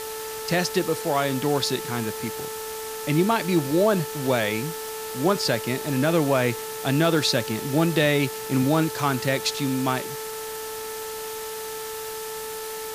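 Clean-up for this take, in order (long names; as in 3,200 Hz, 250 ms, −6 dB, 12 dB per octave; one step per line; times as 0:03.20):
clipped peaks rebuilt −10 dBFS
hum removal 439.4 Hz, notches 4
noise reduction from a noise print 30 dB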